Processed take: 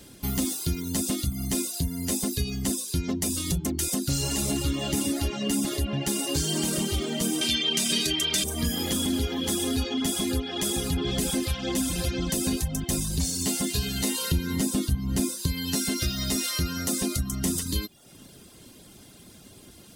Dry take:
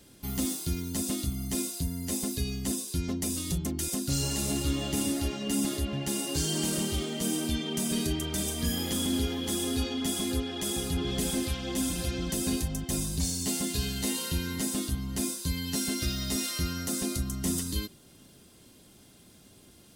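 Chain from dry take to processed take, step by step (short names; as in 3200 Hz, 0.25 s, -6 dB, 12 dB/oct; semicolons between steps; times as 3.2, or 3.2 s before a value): 7.41–8.44 weighting filter D; reverb removal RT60 0.55 s; 14.31–15.47 low shelf 410 Hz +7 dB; compressor 2.5:1, threshold -32 dBFS, peak gain reduction 9 dB; gain +7.5 dB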